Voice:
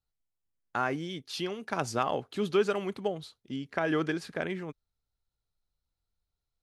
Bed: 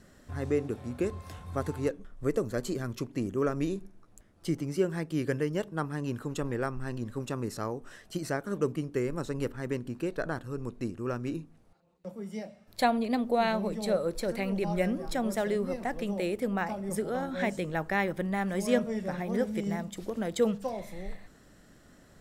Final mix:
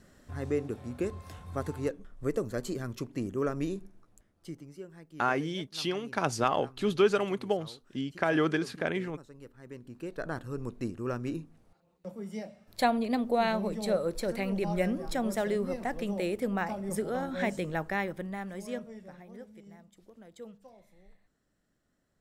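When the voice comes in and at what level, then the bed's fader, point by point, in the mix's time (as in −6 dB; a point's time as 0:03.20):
4.45 s, +2.0 dB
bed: 0:03.97 −2 dB
0:04.84 −17.5 dB
0:09.47 −17.5 dB
0:10.40 −0.5 dB
0:17.73 −0.5 dB
0:19.58 −20 dB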